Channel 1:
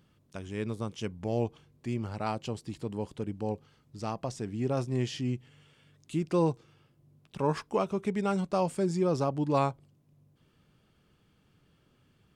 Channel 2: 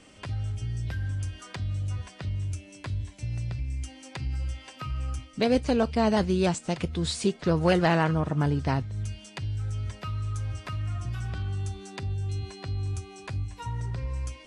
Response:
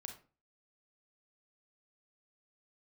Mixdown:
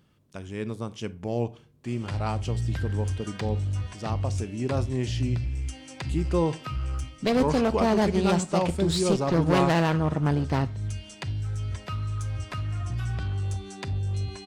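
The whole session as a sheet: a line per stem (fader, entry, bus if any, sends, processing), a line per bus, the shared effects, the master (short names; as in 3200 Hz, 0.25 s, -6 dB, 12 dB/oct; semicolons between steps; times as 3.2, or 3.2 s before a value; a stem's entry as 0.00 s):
-0.5 dB, 0.00 s, send -5.5 dB, dry
0.0 dB, 1.85 s, send -6 dB, one-sided clip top -27.5 dBFS, bottom -15.5 dBFS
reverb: on, RT60 0.35 s, pre-delay 30 ms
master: dry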